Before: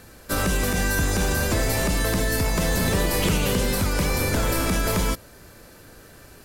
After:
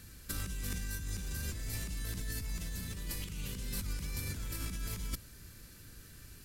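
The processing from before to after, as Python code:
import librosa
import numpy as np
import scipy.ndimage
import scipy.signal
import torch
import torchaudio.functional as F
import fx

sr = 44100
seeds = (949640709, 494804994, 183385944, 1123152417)

y = fx.over_compress(x, sr, threshold_db=-26.0, ratio=-0.5)
y = fx.tone_stack(y, sr, knobs='6-0-2')
y = F.gain(torch.from_numpy(y), 4.5).numpy()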